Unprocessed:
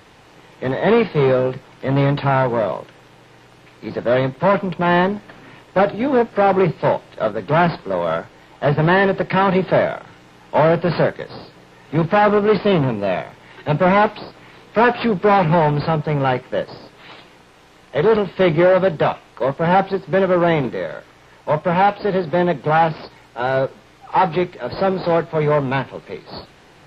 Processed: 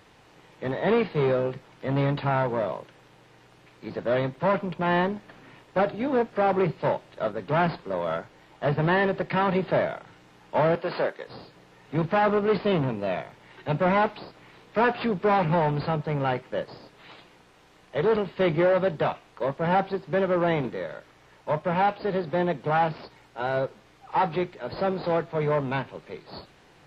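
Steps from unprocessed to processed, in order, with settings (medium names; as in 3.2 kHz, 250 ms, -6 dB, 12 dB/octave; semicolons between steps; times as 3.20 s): 10.75–11.27 s: high-pass 330 Hz 12 dB/octave; trim -8 dB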